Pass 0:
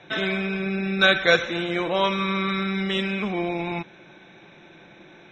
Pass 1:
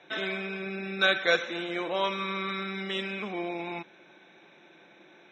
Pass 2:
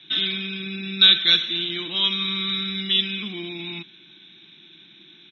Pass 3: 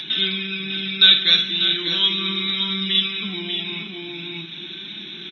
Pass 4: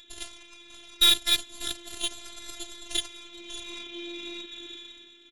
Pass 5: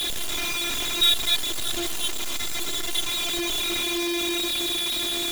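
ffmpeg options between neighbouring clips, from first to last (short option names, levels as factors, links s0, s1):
-af "highpass=250,volume=0.501"
-af "firequalizer=gain_entry='entry(110,0);entry(340,-8);entry(520,-28);entry(1100,-15);entry(2300,-7);entry(3400,10);entry(7900,-27)':delay=0.05:min_phase=1,volume=2.82"
-filter_complex "[0:a]asplit=2[s0][s1];[s1]aecho=0:1:54|592|629:0.355|0.398|0.211[s2];[s0][s2]amix=inputs=2:normalize=0,acompressor=mode=upward:threshold=0.0708:ratio=2.5,flanger=delay=4.6:depth=3.1:regen=48:speed=0.4:shape=triangular,volume=1.78"
-af "aeval=exprs='0.891*(cos(1*acos(clip(val(0)/0.891,-1,1)))-cos(1*PI/2))+0.0631*(cos(6*acos(clip(val(0)/0.891,-1,1)))-cos(6*PI/2))+0.158*(cos(7*acos(clip(val(0)/0.891,-1,1)))-cos(7*PI/2))':c=same,dynaudnorm=f=130:g=9:m=5.01,afftfilt=real='hypot(re,im)*cos(PI*b)':imag='0':win_size=512:overlap=0.75,volume=0.562"
-af "aeval=exprs='val(0)+0.5*0.119*sgn(val(0))':c=same,volume=0.75"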